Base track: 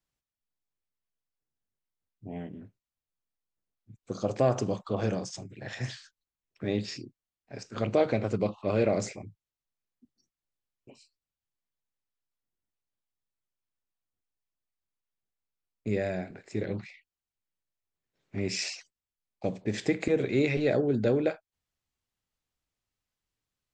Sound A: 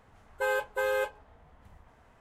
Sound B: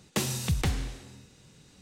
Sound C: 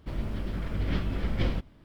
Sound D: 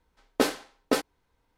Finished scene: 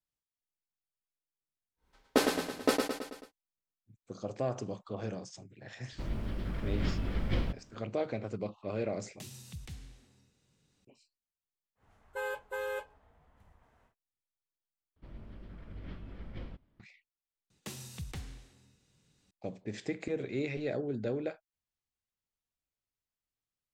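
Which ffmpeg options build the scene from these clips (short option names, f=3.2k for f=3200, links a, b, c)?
-filter_complex "[3:a]asplit=2[a][b];[2:a]asplit=2[c][d];[0:a]volume=-9dB[e];[4:a]aecho=1:1:109|218|327|436|545|654|763:0.596|0.328|0.18|0.0991|0.0545|0.03|0.0165[f];[c]acrossover=split=240|2100[g][h][i];[h]acompressor=threshold=-54dB:ratio=2:attack=13:release=109:knee=2.83:detection=peak[j];[g][j][i]amix=inputs=3:normalize=0[k];[b]lowpass=f=3.2k:p=1[l];[d]equalizer=f=550:t=o:w=2.7:g=-2.5[m];[e]asplit=3[n][o][p];[n]atrim=end=14.964[q];[l]atrim=end=1.84,asetpts=PTS-STARTPTS,volume=-16dB[r];[o]atrim=start=16.796:end=17.504[s];[m]atrim=end=1.81,asetpts=PTS-STARTPTS,volume=-14dB[t];[p]atrim=start=19.306[u];[f]atrim=end=1.57,asetpts=PTS-STARTPTS,volume=-3dB,afade=t=in:d=0.1,afade=t=out:st=1.47:d=0.1,adelay=1760[v];[a]atrim=end=1.84,asetpts=PTS-STARTPTS,volume=-3.5dB,afade=t=in:d=0.004:c=hsin,afade=t=out:st=1.836:d=0.004:c=hsin,adelay=5920[w];[k]atrim=end=1.81,asetpts=PTS-STARTPTS,volume=-17dB,afade=t=in:d=0.004:c=hsin,afade=t=out:st=1.806:d=0.004:c=hsin,adelay=9040[x];[1:a]atrim=end=2.2,asetpts=PTS-STARTPTS,volume=-8dB,afade=t=in:d=0.1,afade=t=out:st=2.1:d=0.1,adelay=11750[y];[q][r]acrossfade=d=0.004:c1=hsin:c2=hsin[z];[z][s]acrossfade=d=0.004:c1=hsin:c2=hsin[aa];[aa][t]acrossfade=d=0.004:c1=hsin:c2=hsin[ab];[ab][u]acrossfade=d=0.004:c1=hsin:c2=hsin[ac];[ac][v][w][x][y]amix=inputs=5:normalize=0"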